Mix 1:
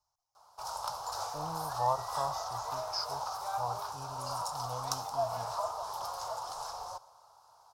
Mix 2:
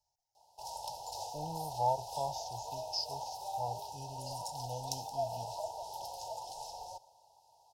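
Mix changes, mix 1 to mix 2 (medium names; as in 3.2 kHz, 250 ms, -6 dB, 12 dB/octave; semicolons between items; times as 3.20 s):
background -3.0 dB; master: add brick-wall FIR band-stop 970–2500 Hz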